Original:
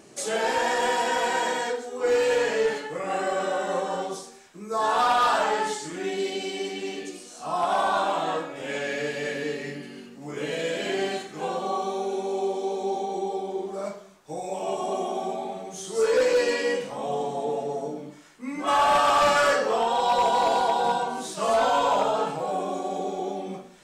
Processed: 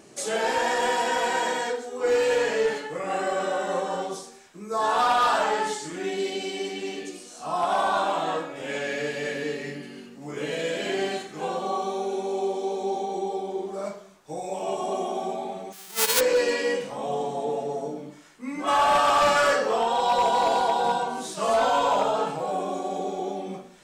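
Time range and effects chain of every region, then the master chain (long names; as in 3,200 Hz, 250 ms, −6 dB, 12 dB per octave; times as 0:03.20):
0:15.72–0:16.19: spectral envelope flattened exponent 0.1 + high-pass filter 220 Hz + expander for the loud parts, over −32 dBFS
whole clip: no processing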